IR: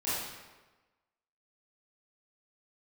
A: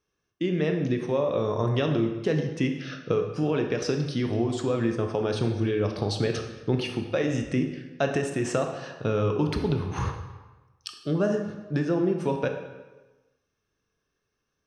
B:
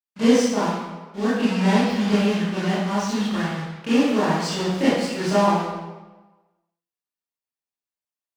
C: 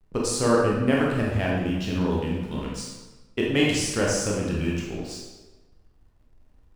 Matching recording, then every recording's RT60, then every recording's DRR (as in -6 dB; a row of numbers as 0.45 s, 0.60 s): B; 1.2 s, 1.2 s, 1.2 s; 4.0 dB, -12.5 dB, -4.0 dB